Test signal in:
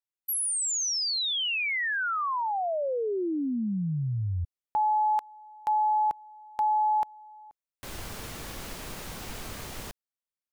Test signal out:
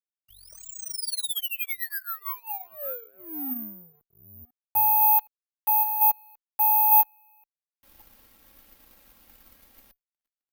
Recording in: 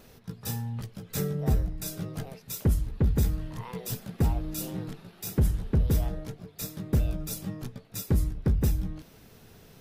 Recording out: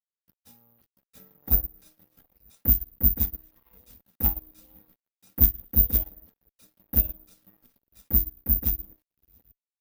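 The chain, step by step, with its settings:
delay that plays each chunk backwards 501 ms, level −13 dB
high-shelf EQ 3,700 Hz +9.5 dB
comb filter 3.7 ms, depth 83%
hum removal 388.4 Hz, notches 8
dead-zone distortion −36.5 dBFS
harmonic generator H 2 −12 dB, 3 −19 dB, 4 −22 dB, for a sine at −10 dBFS
high-frequency loss of the air 130 metres
bad sample-rate conversion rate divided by 3×, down none, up zero stuff
expander for the loud parts 2.5 to 1, over −29 dBFS
level +2.5 dB

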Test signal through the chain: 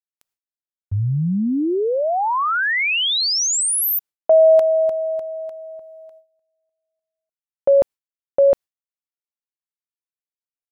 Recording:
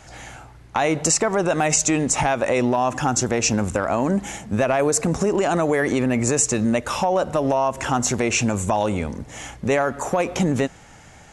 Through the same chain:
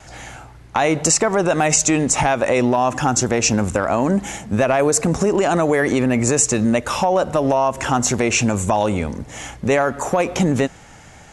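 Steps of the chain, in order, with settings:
noise gate with hold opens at −45 dBFS
level +3 dB

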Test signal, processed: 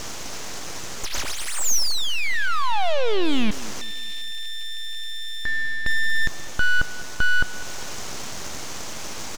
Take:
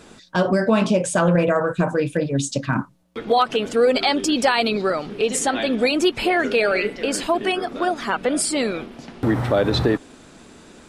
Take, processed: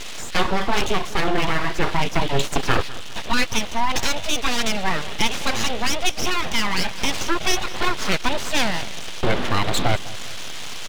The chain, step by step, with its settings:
linear delta modulator 64 kbit/s, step −29.5 dBFS
low-pass with resonance 3,200 Hz, resonance Q 3.5
full-wave rectification
speech leveller within 5 dB 0.5 s
on a send: repeating echo 201 ms, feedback 44%, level −18 dB

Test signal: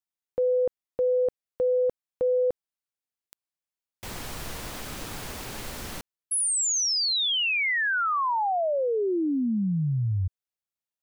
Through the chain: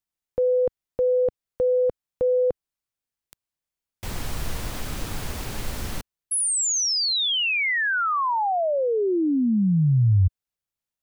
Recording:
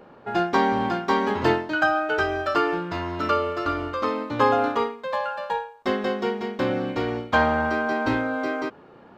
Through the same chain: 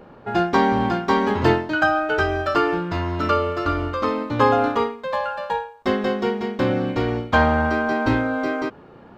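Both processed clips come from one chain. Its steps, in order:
low-shelf EQ 140 Hz +10 dB
level +2 dB

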